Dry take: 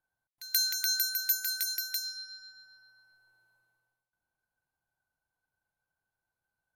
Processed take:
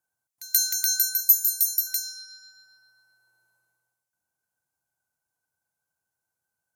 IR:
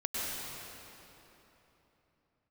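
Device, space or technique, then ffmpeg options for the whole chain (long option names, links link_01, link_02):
budget condenser microphone: -filter_complex "[0:a]asettb=1/sr,asplit=3[link_01][link_02][link_03];[link_01]atrim=end=1.204[link_04];[link_02]atrim=start=1.2:end=1.87,asetpts=PTS-STARTPTS,afade=type=in:duration=0.004:curve=qsin,afade=type=out:start_time=0.666:duration=0.004:curve=qsin,aderivative[link_05];[link_03]atrim=start=1.866[link_06];[link_04][link_05]acrossfade=duration=0.004:curve1=hsin:curve2=qsin[link_07];[link_07][link_06]acrossfade=duration=0.004:curve1=qsin:curve2=hsin,highpass=84,highshelf=frequency=5000:width_type=q:width=1.5:gain=7.5"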